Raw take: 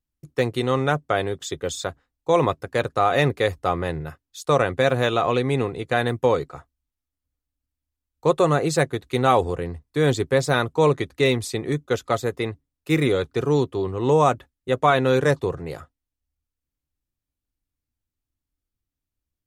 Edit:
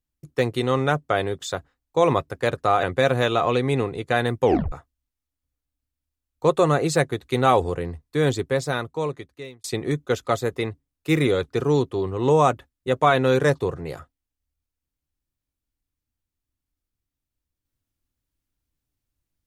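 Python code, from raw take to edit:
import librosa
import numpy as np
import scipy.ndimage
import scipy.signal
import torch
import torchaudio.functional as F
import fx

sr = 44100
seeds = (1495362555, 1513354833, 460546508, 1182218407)

y = fx.edit(x, sr, fx.cut(start_s=1.47, length_s=0.32),
    fx.cut(start_s=3.15, length_s=1.49),
    fx.tape_stop(start_s=6.26, length_s=0.27),
    fx.fade_out_span(start_s=9.84, length_s=1.61), tone=tone)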